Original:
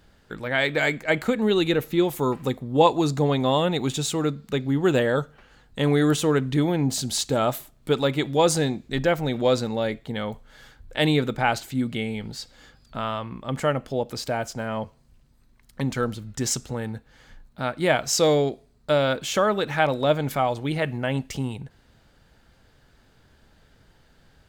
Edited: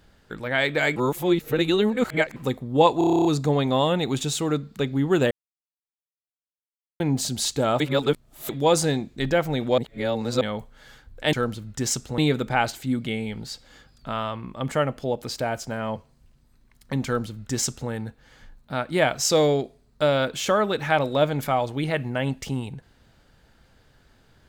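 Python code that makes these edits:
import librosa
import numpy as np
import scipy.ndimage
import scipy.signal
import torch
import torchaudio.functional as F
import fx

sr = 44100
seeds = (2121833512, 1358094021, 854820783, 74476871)

y = fx.edit(x, sr, fx.reverse_span(start_s=0.96, length_s=1.4),
    fx.stutter(start_s=2.98, slice_s=0.03, count=10),
    fx.silence(start_s=5.04, length_s=1.69),
    fx.reverse_span(start_s=7.53, length_s=0.69),
    fx.reverse_span(start_s=9.51, length_s=0.63),
    fx.duplicate(start_s=15.93, length_s=0.85, to_s=11.06), tone=tone)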